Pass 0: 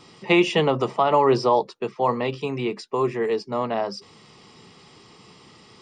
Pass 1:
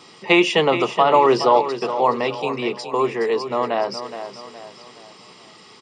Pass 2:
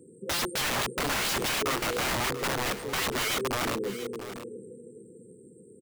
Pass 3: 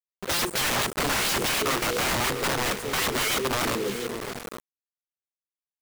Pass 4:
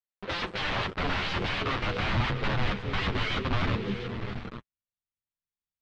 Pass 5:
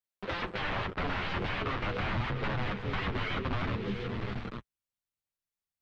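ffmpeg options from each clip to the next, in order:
ffmpeg -i in.wav -filter_complex "[0:a]highpass=frequency=370:poles=1,asplit=2[link_01][link_02];[link_02]aecho=0:1:419|838|1257|1676:0.299|0.125|0.0527|0.0221[link_03];[link_01][link_03]amix=inputs=2:normalize=0,volume=5dB" out.wav
ffmpeg -i in.wav -af "afftfilt=real='re*(1-between(b*sr/4096,520,7500))':imag='im*(1-between(b*sr/4096,520,7500))':win_size=4096:overlap=0.75,aeval=exprs='(mod(15.8*val(0)+1,2)-1)/15.8':channel_layout=same,aecho=1:1:685:0.224" out.wav
ffmpeg -i in.wav -af "acrusher=bits=5:mix=0:aa=0.000001,volume=3dB" out.wav
ffmpeg -i in.wav -af "lowpass=frequency=3800:width=0.5412,lowpass=frequency=3800:width=1.3066,asubboost=boost=6.5:cutoff=170,flanger=delay=8.9:depth=2.4:regen=-21:speed=0.43:shape=triangular" out.wav
ffmpeg -i in.wav -filter_complex "[0:a]acrossover=split=92|2700[link_01][link_02][link_03];[link_01]acompressor=threshold=-36dB:ratio=4[link_04];[link_02]acompressor=threshold=-31dB:ratio=4[link_05];[link_03]acompressor=threshold=-51dB:ratio=4[link_06];[link_04][link_05][link_06]amix=inputs=3:normalize=0" out.wav

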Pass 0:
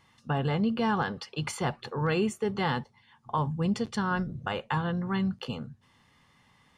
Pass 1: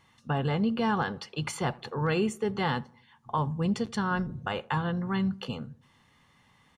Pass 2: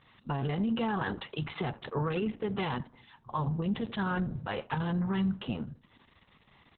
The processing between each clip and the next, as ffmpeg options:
ffmpeg -i in.wav -filter_complex "[0:a]bandreject=frequency=5000:width=17,asplit=2[link_01][link_02];[link_02]adelay=83,lowpass=frequency=1200:poles=1,volume=-22dB,asplit=2[link_03][link_04];[link_04]adelay=83,lowpass=frequency=1200:poles=1,volume=0.5,asplit=2[link_05][link_06];[link_06]adelay=83,lowpass=frequency=1200:poles=1,volume=0.5[link_07];[link_01][link_03][link_05][link_07]amix=inputs=4:normalize=0" out.wav
ffmpeg -i in.wav -af "alimiter=level_in=0.5dB:limit=-24dB:level=0:latency=1:release=40,volume=-0.5dB,volume=2dB" -ar 48000 -c:a libopus -b:a 6k out.opus

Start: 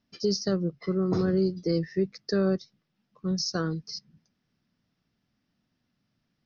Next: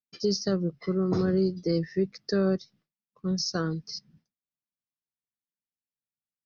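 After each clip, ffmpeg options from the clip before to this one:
ffmpeg -i in.wav -af "agate=range=-33dB:threshold=-56dB:ratio=3:detection=peak" out.wav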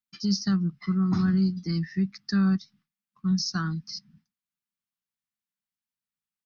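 ffmpeg -i in.wav -af "firequalizer=gain_entry='entry(140,0);entry(200,6);entry(510,-29);entry(760,-3);entry(1200,3);entry(5800,0)':delay=0.05:min_phase=1" out.wav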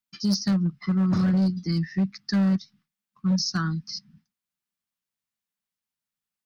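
ffmpeg -i in.wav -af "volume=20.5dB,asoftclip=hard,volume=-20.5dB,volume=2.5dB" out.wav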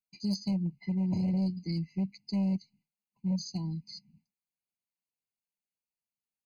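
ffmpeg -i in.wav -af "afftfilt=real='re*eq(mod(floor(b*sr/1024/1000),2),0)':imag='im*eq(mod(floor(b*sr/1024/1000),2),0)':win_size=1024:overlap=0.75,volume=-7.5dB" out.wav

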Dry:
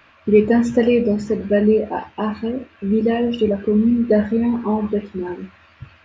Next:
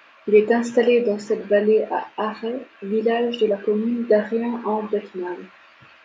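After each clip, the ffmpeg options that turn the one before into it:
ffmpeg -i in.wav -af "highpass=370,volume=1.5dB" out.wav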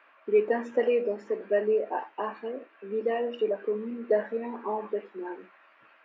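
ffmpeg -i in.wav -filter_complex "[0:a]acrossover=split=250 2500:gain=0.0794 1 0.141[link_01][link_02][link_03];[link_01][link_02][link_03]amix=inputs=3:normalize=0,volume=-7dB" out.wav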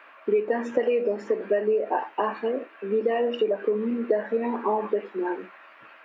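ffmpeg -i in.wav -af "acompressor=threshold=-29dB:ratio=6,volume=9dB" out.wav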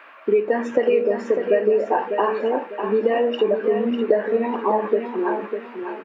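ffmpeg -i in.wav -af "aecho=1:1:600|1200|1800|2400:0.422|0.139|0.0459|0.0152,volume=4.5dB" out.wav

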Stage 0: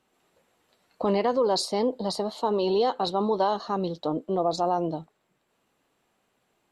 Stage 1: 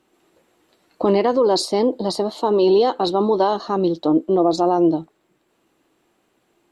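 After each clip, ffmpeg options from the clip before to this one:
ffmpeg -i in.wav -af "equalizer=frequency=330:width=3.5:gain=11,volume=5dB" out.wav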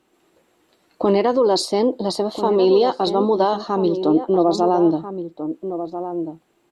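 ffmpeg -i in.wav -filter_complex "[0:a]asplit=2[link_01][link_02];[link_02]adelay=1341,volume=-9dB,highshelf=frequency=4000:gain=-30.2[link_03];[link_01][link_03]amix=inputs=2:normalize=0" out.wav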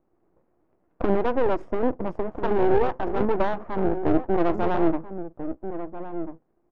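ffmpeg -i in.wav -af "asuperstop=centerf=4000:order=4:qfactor=1.1,aeval=exprs='max(val(0),0)':channel_layout=same,adynamicsmooth=sensitivity=0.5:basefreq=930" out.wav

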